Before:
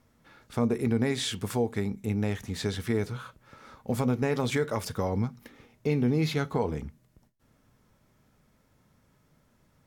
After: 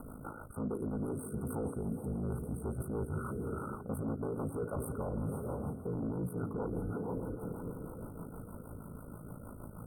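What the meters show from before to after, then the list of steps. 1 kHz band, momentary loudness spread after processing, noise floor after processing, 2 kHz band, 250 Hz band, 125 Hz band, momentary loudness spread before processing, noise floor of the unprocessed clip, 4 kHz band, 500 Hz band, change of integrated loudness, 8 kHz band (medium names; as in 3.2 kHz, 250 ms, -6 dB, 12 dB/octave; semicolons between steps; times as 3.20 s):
-7.5 dB, 11 LU, -49 dBFS, -16.0 dB, -7.5 dB, -7.0 dB, 10 LU, -67 dBFS, under -40 dB, -8.0 dB, -10.0 dB, -10.5 dB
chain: ring modulator 27 Hz; in parallel at 0 dB: upward compressor, threshold -34 dBFS; on the sum: echo that smears into a reverb 495 ms, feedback 45%, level -13 dB; saturation -24.5 dBFS, distortion -7 dB; rotary cabinet horn 6.3 Hz; reverse; compression 16:1, threshold -37 dBFS, peak gain reduction 11.5 dB; reverse; FFT band-reject 1.5–8.2 kHz; trim +4 dB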